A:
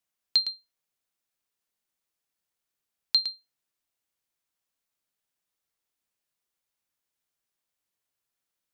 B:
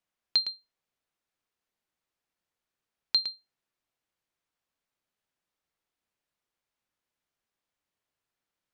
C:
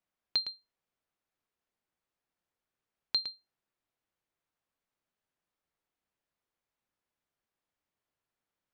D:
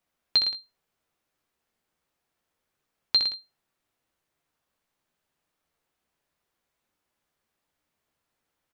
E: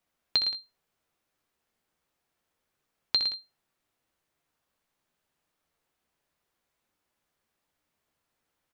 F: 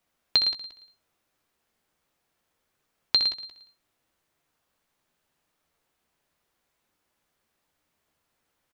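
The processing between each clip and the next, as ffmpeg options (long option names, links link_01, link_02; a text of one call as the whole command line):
ffmpeg -i in.wav -af "lowpass=frequency=2700:poles=1,volume=3dB" out.wav
ffmpeg -i in.wav -af "highshelf=frequency=2600:gain=-7" out.wav
ffmpeg -i in.wav -af "aecho=1:1:13|63|80:0.398|0.531|0.178,volume=7dB" out.wav
ffmpeg -i in.wav -af "acompressor=threshold=-22dB:ratio=6" out.wav
ffmpeg -i in.wav -af "aecho=1:1:176|352:0.15|0.0374,volume=4dB" out.wav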